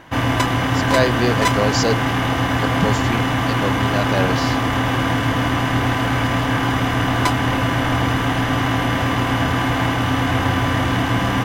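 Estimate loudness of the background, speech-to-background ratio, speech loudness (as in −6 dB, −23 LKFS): −19.0 LKFS, −5.0 dB, −24.0 LKFS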